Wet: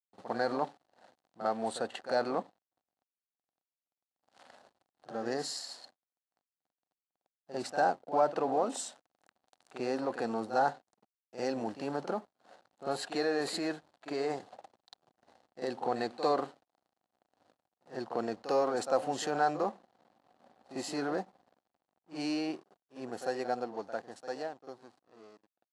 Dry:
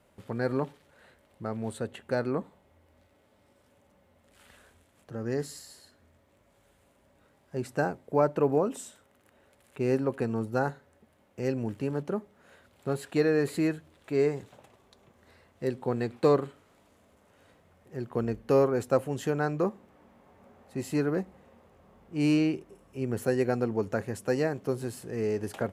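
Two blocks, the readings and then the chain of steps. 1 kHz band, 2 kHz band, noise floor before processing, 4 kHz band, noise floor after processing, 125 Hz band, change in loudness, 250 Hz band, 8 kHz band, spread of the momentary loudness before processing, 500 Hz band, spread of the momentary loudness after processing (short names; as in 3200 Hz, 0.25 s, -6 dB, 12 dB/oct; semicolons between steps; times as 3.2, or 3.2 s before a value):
+3.5 dB, -2.5 dB, -65 dBFS, +4.0 dB, under -85 dBFS, -17.0 dB, -4.5 dB, -8.0 dB, +1.0 dB, 14 LU, -5.5 dB, 14 LU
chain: ending faded out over 5.71 s; bell 5300 Hz +3.5 dB 0.59 oct; in parallel at +1 dB: negative-ratio compressor -31 dBFS, ratio -1; on the sum: backlash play -39.5 dBFS; speaker cabinet 370–9800 Hz, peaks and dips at 410 Hz -6 dB, 750 Hz +9 dB, 2300 Hz -5 dB, 4300 Hz +6 dB; reverse echo 49 ms -11.5 dB; gain -5 dB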